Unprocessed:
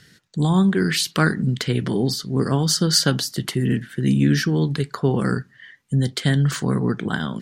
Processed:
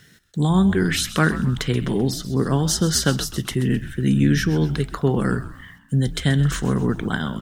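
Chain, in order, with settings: notch 4600 Hz, Q 5.8; bit-crush 10-bit; frequency-shifting echo 0.13 s, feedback 44%, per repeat -100 Hz, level -14 dB

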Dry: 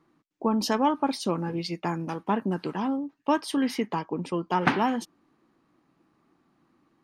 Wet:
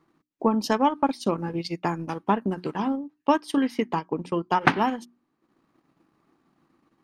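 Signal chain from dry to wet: notches 60/120/180/240/300/360 Hz; transient shaper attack +4 dB, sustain -9 dB; gain +1 dB

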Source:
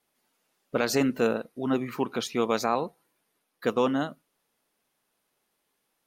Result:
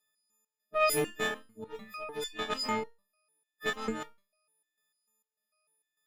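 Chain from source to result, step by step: frequency quantiser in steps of 6 st; added harmonics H 2 -11 dB, 4 -10 dB, 6 -25 dB, 7 -24 dB, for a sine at -7 dBFS; stepped resonator 6.7 Hz 84–620 Hz; gain +3 dB

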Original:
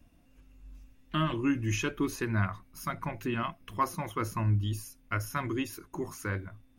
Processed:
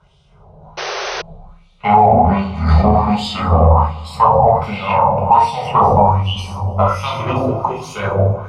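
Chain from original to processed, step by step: speed glide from 57% -> 103%; tube stage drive 25 dB, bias 0.45; fixed phaser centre 720 Hz, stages 4; on a send: echo with dull and thin repeats by turns 0.1 s, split 870 Hz, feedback 78%, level -11.5 dB; on the sum: shoebox room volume 160 m³, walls mixed, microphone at 1.4 m; LFO band-pass sine 1.3 Hz 600–3400 Hz; painted sound noise, 0.77–1.22, 360–6300 Hz -51 dBFS; in parallel at -6 dB: overloaded stage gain 31.5 dB; on the sum: HPF 48 Hz; tilt -4 dB/oct; maximiser +29 dB; gain -1 dB

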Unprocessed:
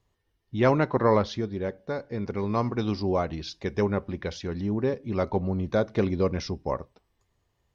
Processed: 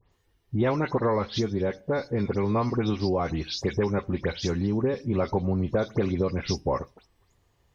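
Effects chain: spectral delay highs late, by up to 0.115 s; compressor 6:1, threshold -28 dBFS, peak gain reduction 11.5 dB; gain +6.5 dB

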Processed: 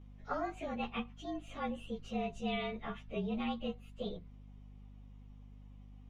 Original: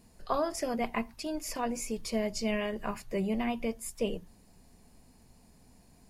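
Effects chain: inharmonic rescaling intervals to 110%; hum 50 Hz, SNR 12 dB; synth low-pass 3100 Hz, resonance Q 1.6; gain -4.5 dB

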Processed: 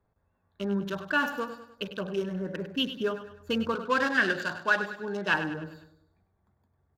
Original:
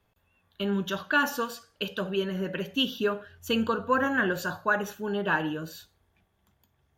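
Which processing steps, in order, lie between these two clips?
Wiener smoothing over 15 samples; 3.75–5.34 weighting filter D; on a send: feedback echo 0.1 s, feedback 45%, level -11 dB; on the sum: gain -2 dB

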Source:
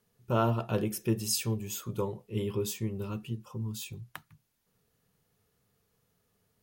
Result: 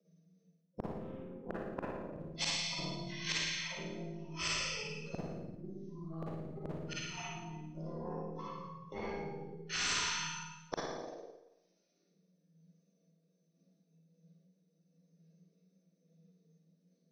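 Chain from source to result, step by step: spectral contrast raised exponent 2; steep high-pass 420 Hz 96 dB/oct; gate with hold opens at -60 dBFS; resonant high shelf 1800 Hz -8.5 dB, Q 3; limiter -29.5 dBFS, peak gain reduction 15 dB; added harmonics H 2 -43 dB, 3 -25 dB, 8 -32 dB, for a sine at -29.5 dBFS; wide varispeed 0.387×; flipped gate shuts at -38 dBFS, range -36 dB; on a send: flutter echo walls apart 9.5 m, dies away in 0.42 s; on the sum: Schroeder reverb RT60 0.91 s, DRR -6 dB; spectral compressor 4:1; gain +10.5 dB

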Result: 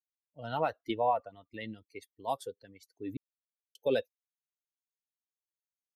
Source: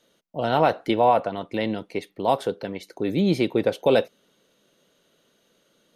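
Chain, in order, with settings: per-bin expansion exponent 2; 1.66–2.55 high shelf 4400 Hz +6 dB; 3.17–3.75 mute; gain -7.5 dB

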